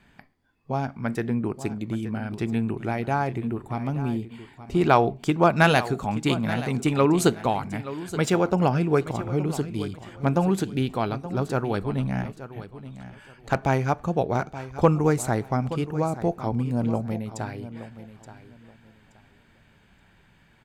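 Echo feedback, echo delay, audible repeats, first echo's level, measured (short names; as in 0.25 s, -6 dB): 23%, 0.875 s, 2, -14.0 dB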